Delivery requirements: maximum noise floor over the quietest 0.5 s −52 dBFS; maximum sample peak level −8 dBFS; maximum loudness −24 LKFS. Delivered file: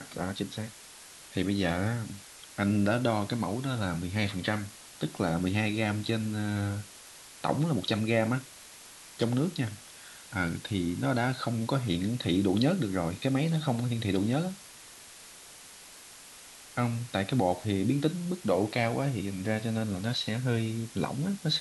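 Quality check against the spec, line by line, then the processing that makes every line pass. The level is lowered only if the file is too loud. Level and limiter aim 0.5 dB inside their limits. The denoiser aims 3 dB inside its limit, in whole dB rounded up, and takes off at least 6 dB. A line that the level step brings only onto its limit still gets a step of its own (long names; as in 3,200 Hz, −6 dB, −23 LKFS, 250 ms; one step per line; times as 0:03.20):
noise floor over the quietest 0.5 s −50 dBFS: out of spec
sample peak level −12.0 dBFS: in spec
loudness −30.5 LKFS: in spec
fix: broadband denoise 6 dB, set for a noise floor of −50 dBFS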